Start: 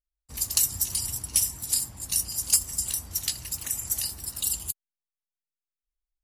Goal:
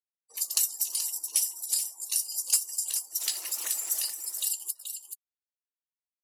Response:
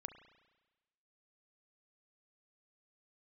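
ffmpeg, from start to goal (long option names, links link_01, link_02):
-filter_complex "[0:a]asettb=1/sr,asplit=3[link_01][link_02][link_03];[link_01]atrim=end=3.204[link_04];[link_02]atrim=start=3.2:end=4.06,asetpts=PTS-STARTPTS,afade=type=in:duration=0.004:curve=qsin,afade=type=out:start_time=0.856:duration=0.004:curve=qsin,aeval=exprs='val(0)+0.5*0.0211*sgn(val(0))':channel_layout=same[link_05];[link_03]atrim=start=4.056[link_06];[link_04][link_05]acrossfade=duration=0.004:curve1=hsin:curve2=qsin[link_07];[link_07][link_06]acrossfade=duration=0.004:curve1=qsin:curve2=hsin,highpass=frequency=370:width=0.5412,highpass=frequency=370:width=1.3066,afftdn=noise_reduction=26:noise_floor=-47,aecho=1:1:429:0.316,asplit=2[link_08][link_09];[link_09]acompressor=threshold=-36dB:ratio=6,volume=-2.5dB[link_10];[link_08][link_10]amix=inputs=2:normalize=0,volume=-4dB"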